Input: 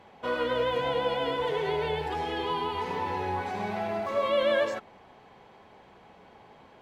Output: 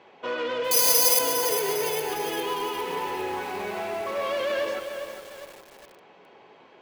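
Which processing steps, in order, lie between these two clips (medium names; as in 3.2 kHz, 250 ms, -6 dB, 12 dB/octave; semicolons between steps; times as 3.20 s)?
in parallel at -2.5 dB: peak limiter -22 dBFS, peak gain reduction 6.5 dB; on the sum: hard clipper -21.5 dBFS, distortion -14 dB; cabinet simulation 210–6800 Hz, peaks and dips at 210 Hz -6 dB, 380 Hz +4 dB, 790 Hz -3 dB, 2.6 kHz +4 dB; on a send: two-band feedback delay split 660 Hz, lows 298 ms, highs 178 ms, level -14 dB; 0.71–1.19 s: on the sum: careless resampling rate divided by 8×, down none, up zero stuff; bit-crushed delay 405 ms, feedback 55%, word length 6-bit, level -8 dB; trim -3.5 dB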